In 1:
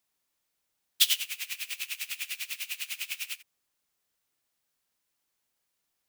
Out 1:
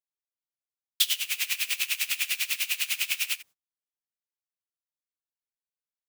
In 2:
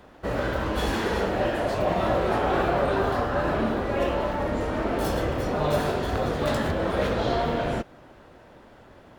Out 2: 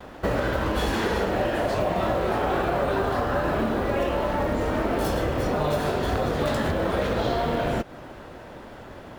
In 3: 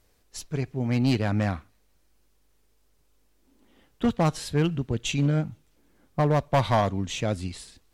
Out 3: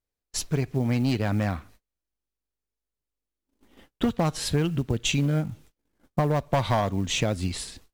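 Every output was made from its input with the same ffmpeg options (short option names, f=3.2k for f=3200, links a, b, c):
-af "acompressor=threshold=-30dB:ratio=6,acrusher=bits=8:mode=log:mix=0:aa=0.000001,agate=range=-32dB:threshold=-58dB:ratio=16:detection=peak,volume=8.5dB"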